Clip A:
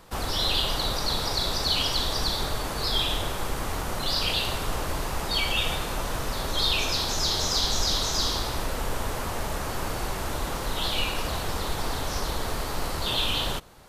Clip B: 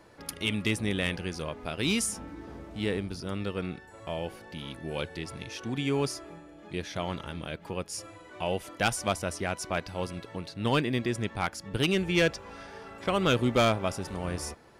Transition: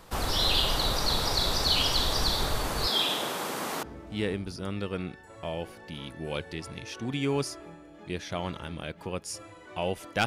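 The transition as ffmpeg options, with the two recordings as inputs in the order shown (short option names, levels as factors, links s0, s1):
-filter_complex "[0:a]asettb=1/sr,asplit=3[s0][s1][s2];[s0]atrim=end=2.874[s3];[s1]atrim=start=2.87:end=3.83,asetpts=PTS-STARTPTS,afade=t=in:d=0.004:c=qsin,afade=t=out:st=0.956:d=0.004:c=qsin,highpass=f=180:w=0.5412,highpass=f=180:w=1.3066[s4];[s2]atrim=start=3.826[s5];[s3][s4]acrossfade=d=0.004:c1=hsin:c2=qsin[s6];[s6][s5]acrossfade=d=0.004:c1=qsin:c2=hsin,apad=whole_dur=10.26,atrim=end=10.26,atrim=end=3.832[s7];[1:a]atrim=start=2.468:end=8.9[s8];[s7][s8]acrossfade=d=0.004:c1=hsin:c2=hsin"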